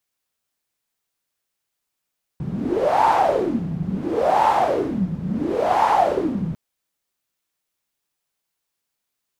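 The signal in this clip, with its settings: wind-like swept noise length 4.15 s, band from 160 Hz, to 890 Hz, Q 8, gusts 3, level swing 9 dB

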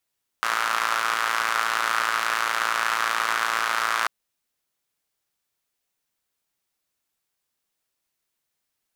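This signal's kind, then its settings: four-cylinder engine model, steady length 3.64 s, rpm 3400, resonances 1.3 kHz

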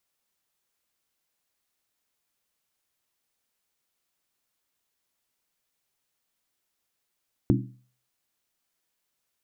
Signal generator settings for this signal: skin hit, lowest mode 125 Hz, decay 0.46 s, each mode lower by 1 dB, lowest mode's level -19 dB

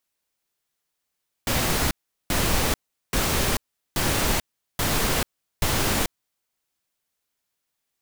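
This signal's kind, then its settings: noise bursts pink, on 0.44 s, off 0.39 s, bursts 6, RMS -22.5 dBFS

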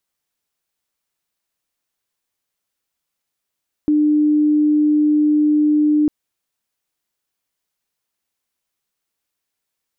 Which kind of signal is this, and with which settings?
tone sine 300 Hz -11.5 dBFS 2.20 s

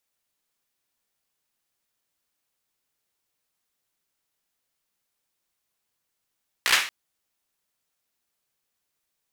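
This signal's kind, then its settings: hand clap length 0.23 s, bursts 5, apart 16 ms, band 2.1 kHz, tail 0.43 s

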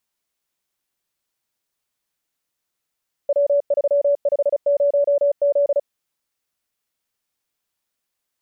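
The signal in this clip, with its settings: Morse "W350Z" 35 wpm 571 Hz -13.5 dBFS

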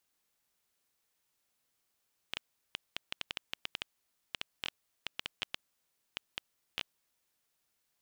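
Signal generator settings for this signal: random clicks 6.2 per s -17 dBFS 4.52 s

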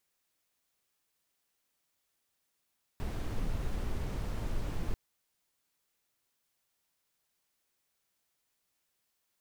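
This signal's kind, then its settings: noise brown, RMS -33 dBFS 1.94 s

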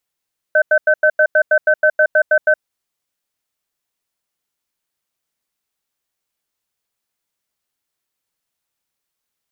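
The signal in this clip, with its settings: cadence 614 Hz, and 1.53 kHz, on 0.07 s, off 0.09 s, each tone -11.5 dBFS 2.08 s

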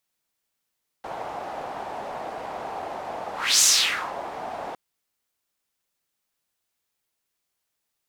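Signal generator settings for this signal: whoosh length 3.71 s, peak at 2.58 s, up 0.30 s, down 0.56 s, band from 750 Hz, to 6.7 kHz, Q 3, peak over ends 17.5 dB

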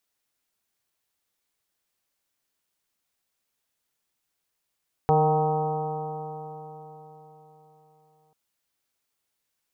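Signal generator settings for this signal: stretched partials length 3.24 s, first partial 153 Hz, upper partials -13/1/-10/2.5/-6/-14.5/-14.5 dB, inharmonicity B 0.0011, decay 4.15 s, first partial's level -22 dB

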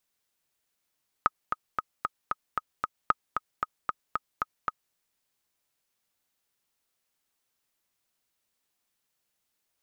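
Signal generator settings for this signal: metronome 228 bpm, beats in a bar 7, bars 2, 1.26 kHz, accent 6.5 dB -7.5 dBFS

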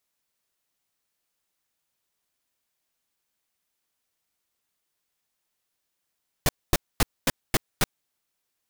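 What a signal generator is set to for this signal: noise bursts pink, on 0.03 s, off 0.24 s, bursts 6, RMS -19.5 dBFS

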